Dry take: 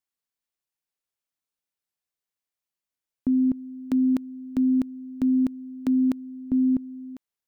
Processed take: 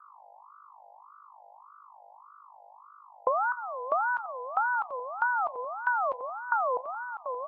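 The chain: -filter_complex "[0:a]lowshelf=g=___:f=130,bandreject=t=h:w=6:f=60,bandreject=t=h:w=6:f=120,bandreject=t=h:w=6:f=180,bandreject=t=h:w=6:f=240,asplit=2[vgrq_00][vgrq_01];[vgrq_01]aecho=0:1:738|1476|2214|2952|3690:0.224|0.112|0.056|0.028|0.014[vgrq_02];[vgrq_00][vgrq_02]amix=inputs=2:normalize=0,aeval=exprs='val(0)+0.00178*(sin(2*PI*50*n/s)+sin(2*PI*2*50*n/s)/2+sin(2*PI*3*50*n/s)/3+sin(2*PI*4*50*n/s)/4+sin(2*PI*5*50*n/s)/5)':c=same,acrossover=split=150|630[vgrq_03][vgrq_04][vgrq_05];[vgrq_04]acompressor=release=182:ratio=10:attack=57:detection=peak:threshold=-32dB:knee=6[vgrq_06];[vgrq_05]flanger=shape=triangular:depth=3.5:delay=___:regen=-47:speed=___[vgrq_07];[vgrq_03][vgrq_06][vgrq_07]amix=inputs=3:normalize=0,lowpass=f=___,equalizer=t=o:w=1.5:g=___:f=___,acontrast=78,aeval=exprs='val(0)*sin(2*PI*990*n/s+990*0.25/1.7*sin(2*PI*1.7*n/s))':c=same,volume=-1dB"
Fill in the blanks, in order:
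3, 7.6, 0.77, 1.3k, -13.5, 950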